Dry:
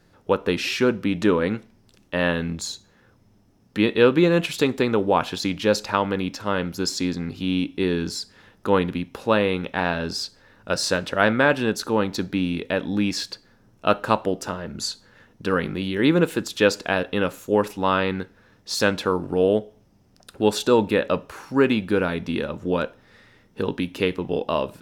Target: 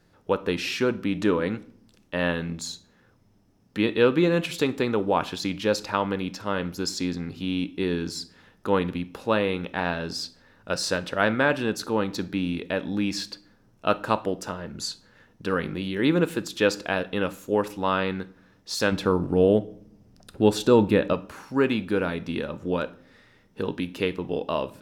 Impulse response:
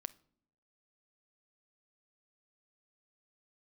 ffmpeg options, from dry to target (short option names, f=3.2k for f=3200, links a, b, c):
-filter_complex "[0:a]asettb=1/sr,asplit=3[a][b][c];[a]atrim=end=18.924[d];[b]atrim=start=18.92:end=21.13,asetpts=PTS-STARTPTS,afade=t=in:d=0.004:c=qsin,afade=t=out:st=2.206:d=0.004:c=qsin,lowshelf=f=330:g=9[e];[c]atrim=start=21.126[f];[d][e]acrossfade=d=0.004:c1=hsin:c2=qsin[g];[g][f]acrossfade=d=0.004:c1=qsin:c2=hsin[h];[1:a]atrim=start_sample=2205[i];[h][i]afir=irnorm=-1:irlink=0"